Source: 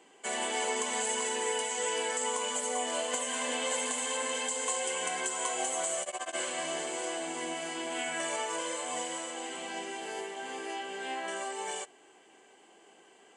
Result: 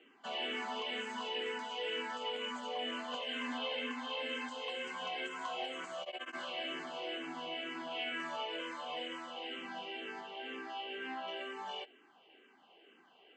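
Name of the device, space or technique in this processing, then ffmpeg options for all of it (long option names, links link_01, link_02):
barber-pole phaser into a guitar amplifier: -filter_complex "[0:a]asettb=1/sr,asplit=3[link_01][link_02][link_03];[link_01]atrim=end=3.584[link_04];[link_02]atrim=start=3.58:end=4.18,asetpts=PTS-STARTPTS,afade=type=in:duration=0.004:curve=qsin,afade=type=out:start_time=0.596:duration=0.004:curve=qsin,lowpass=5400[link_05];[link_03]atrim=start=4.176[link_06];[link_04][link_05]acrossfade=duration=0.004:curve1=hsin:curve2=qsin[link_07];[link_07][link_06]acrossfade=duration=0.004:curve1=qsin:curve2=hsin,asplit=2[link_08][link_09];[link_09]afreqshift=-2.1[link_10];[link_08][link_10]amix=inputs=2:normalize=1,asoftclip=type=tanh:threshold=-27.5dB,highpass=96,equalizer=frequency=250:width_type=q:width=4:gain=7,equalizer=frequency=1300:width_type=q:width=4:gain=6,equalizer=frequency=2800:width_type=q:width=4:gain=8,lowpass=frequency=4300:width=0.5412,lowpass=frequency=4300:width=1.3066,volume=-3.5dB"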